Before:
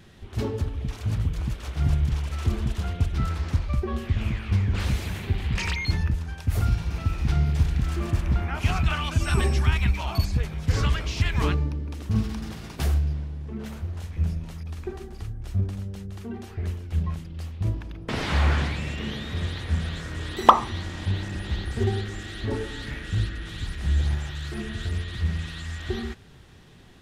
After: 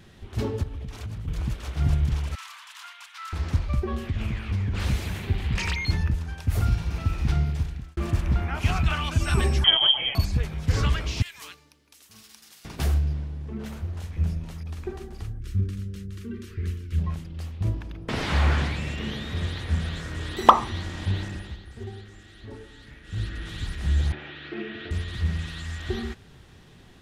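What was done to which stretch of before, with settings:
0.63–1.28 compressor 12:1, threshold -30 dBFS
2.35–3.33 elliptic high-pass 980 Hz, stop band 60 dB
3.91–4.82 compressor 3:1, threshold -23 dBFS
7.3–7.97 fade out linear
9.64–10.15 inverted band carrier 3200 Hz
11.22–12.65 differentiator
15.39–16.99 Butterworth band-stop 750 Hz, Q 0.86
21.22–23.39 dip -13 dB, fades 0.36 s
24.12–24.91 speaker cabinet 260–3400 Hz, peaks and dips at 310 Hz +8 dB, 440 Hz +3 dB, 980 Hz -5 dB, 2400 Hz +4 dB

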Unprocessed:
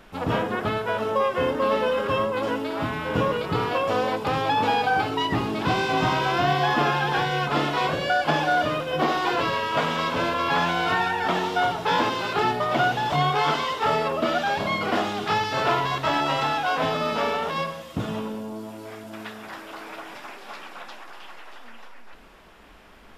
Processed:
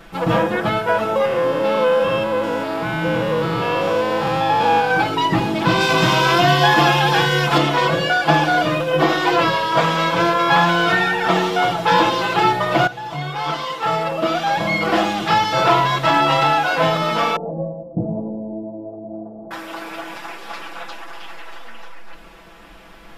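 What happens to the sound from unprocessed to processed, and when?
1.25–4.91 stepped spectrum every 0.2 s
5.8–7.58 high shelf 3400 Hz +7.5 dB
12.87–15 fade in, from -15 dB
17.36–19.51 elliptic low-pass 710 Hz, stop band 70 dB
whole clip: comb 6 ms, depth 98%; gain +4 dB

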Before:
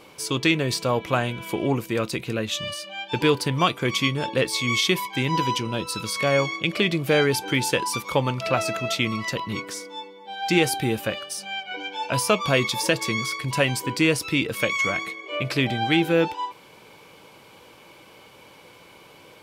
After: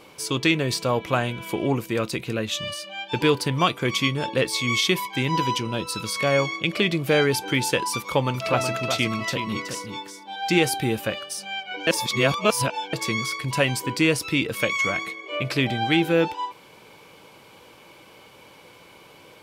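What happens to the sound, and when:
7.97–10.36 echo 0.372 s -8 dB
11.87–12.93 reverse

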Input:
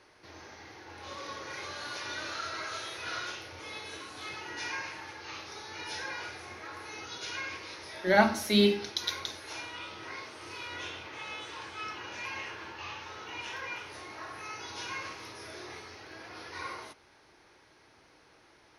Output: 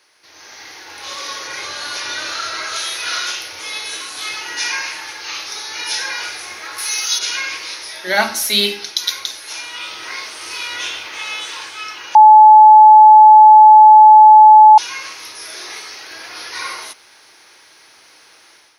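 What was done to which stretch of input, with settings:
1.47–2.76 tilt -1.5 dB/oct
6.78–7.19 RIAA curve recording
12.15–14.78 bleep 860 Hz -7 dBFS
15.44–16.11 low shelf 88 Hz -11.5 dB
whole clip: tilt +4 dB/oct; AGC gain up to 10.5 dB

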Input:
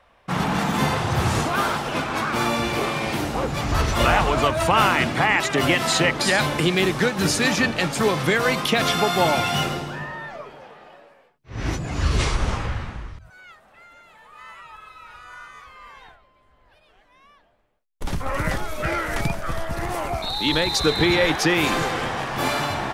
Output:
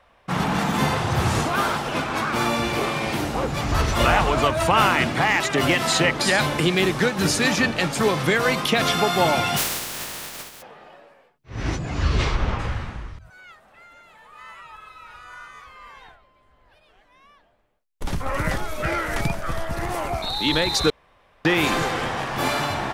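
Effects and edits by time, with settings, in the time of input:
5.03–5.81 hard clip -12 dBFS
9.56–10.61 spectral contrast lowered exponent 0.15
11.62–12.58 LPF 8700 Hz -> 3300 Hz
20.9–21.45 room tone

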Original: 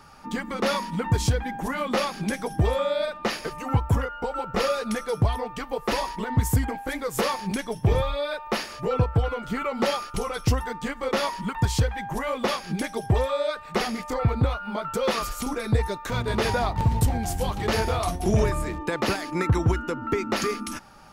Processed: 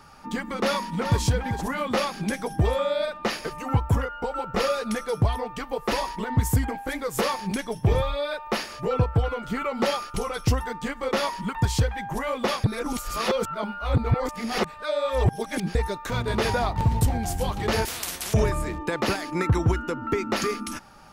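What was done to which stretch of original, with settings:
0.58–1.22 echo throw 0.39 s, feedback 15%, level -8.5 dB
12.64–15.75 reverse
17.85–18.34 spectral compressor 10:1

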